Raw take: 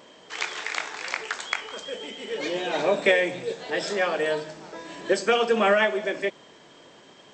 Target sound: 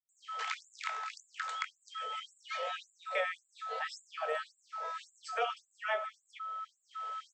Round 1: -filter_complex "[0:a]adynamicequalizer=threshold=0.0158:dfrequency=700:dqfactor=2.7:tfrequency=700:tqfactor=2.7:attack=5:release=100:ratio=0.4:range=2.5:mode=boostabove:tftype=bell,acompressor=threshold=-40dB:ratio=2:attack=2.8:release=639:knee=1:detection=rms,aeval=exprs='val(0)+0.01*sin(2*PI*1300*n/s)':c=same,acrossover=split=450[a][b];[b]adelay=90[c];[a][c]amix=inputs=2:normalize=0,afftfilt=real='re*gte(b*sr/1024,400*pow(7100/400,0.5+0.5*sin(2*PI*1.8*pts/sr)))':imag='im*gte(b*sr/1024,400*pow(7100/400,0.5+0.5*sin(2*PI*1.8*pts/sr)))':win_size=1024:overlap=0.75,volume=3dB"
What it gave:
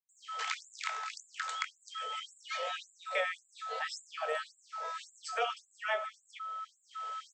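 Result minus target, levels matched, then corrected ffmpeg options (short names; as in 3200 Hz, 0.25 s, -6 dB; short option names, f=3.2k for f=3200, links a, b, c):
8000 Hz band +5.0 dB
-filter_complex "[0:a]adynamicequalizer=threshold=0.0158:dfrequency=700:dqfactor=2.7:tfrequency=700:tqfactor=2.7:attack=5:release=100:ratio=0.4:range=2.5:mode=boostabove:tftype=bell,acompressor=threshold=-40dB:ratio=2:attack=2.8:release=639:knee=1:detection=rms,highshelf=f=4.4k:g=-8,aeval=exprs='val(0)+0.01*sin(2*PI*1300*n/s)':c=same,acrossover=split=450[a][b];[b]adelay=90[c];[a][c]amix=inputs=2:normalize=0,afftfilt=real='re*gte(b*sr/1024,400*pow(7100/400,0.5+0.5*sin(2*PI*1.8*pts/sr)))':imag='im*gte(b*sr/1024,400*pow(7100/400,0.5+0.5*sin(2*PI*1.8*pts/sr)))':win_size=1024:overlap=0.75,volume=3dB"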